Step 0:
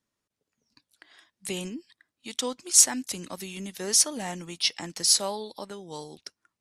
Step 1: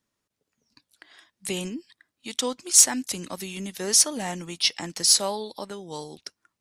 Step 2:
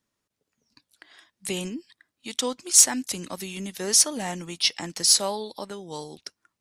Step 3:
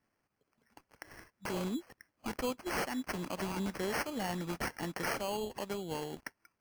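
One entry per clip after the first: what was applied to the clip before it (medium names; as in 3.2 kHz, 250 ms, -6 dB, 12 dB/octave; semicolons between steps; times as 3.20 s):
saturation -6 dBFS, distortion -22 dB; trim +3 dB
no audible change
compression 2:1, threshold -33 dBFS, peak gain reduction 12.5 dB; peak limiter -25.5 dBFS, peak gain reduction 10 dB; sample-and-hold 12×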